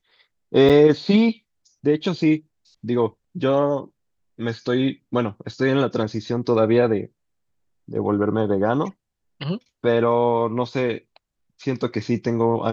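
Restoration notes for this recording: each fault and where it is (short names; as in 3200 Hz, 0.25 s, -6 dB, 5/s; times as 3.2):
0.69–0.7 gap 7.2 ms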